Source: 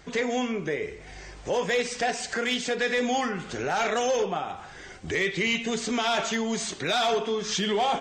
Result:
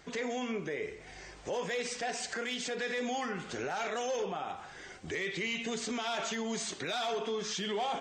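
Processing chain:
low-shelf EQ 110 Hz −8.5 dB
brickwall limiter −23 dBFS, peak gain reduction 6.5 dB
level −4 dB

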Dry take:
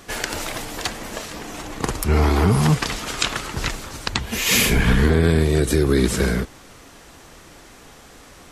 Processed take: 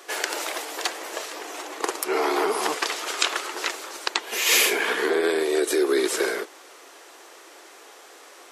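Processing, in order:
elliptic high-pass filter 350 Hz, stop band 80 dB

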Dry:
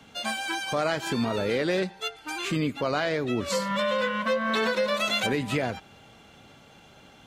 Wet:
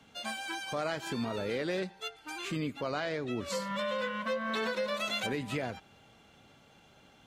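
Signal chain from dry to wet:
0:02.90–0:03.31: low-pass filter 9,900 Hz 24 dB per octave
level −7.5 dB

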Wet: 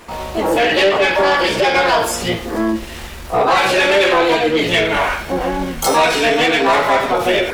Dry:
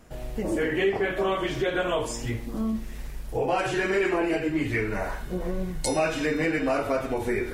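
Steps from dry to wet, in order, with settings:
pitch-shifted copies added +7 semitones 0 dB
mid-hump overdrive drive 16 dB, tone 5,700 Hz, clips at −9.5 dBFS
level +4.5 dB

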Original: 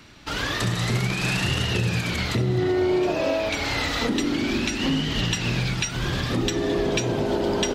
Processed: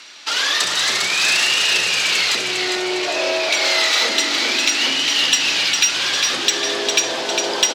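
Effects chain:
band-pass filter 490–6,200 Hz
high-shelf EQ 3,300 Hz +11.5 dB
repeating echo 404 ms, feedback 52%, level −5.5 dB
in parallel at −3.5 dB: soft clipping −20.5 dBFS, distortion −12 dB
on the sum: spectral tilt +1.5 dB per octave

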